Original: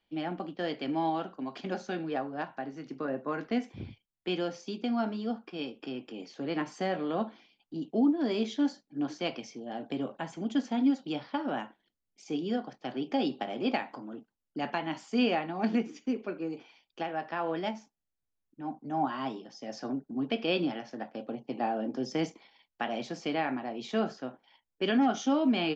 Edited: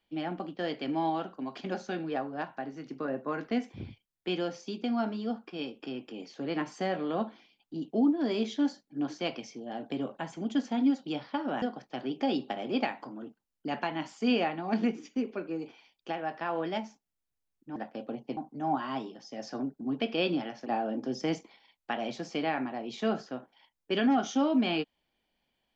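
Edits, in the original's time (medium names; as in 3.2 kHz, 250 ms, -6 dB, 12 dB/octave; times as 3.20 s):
11.62–12.53 s: delete
20.96–21.57 s: move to 18.67 s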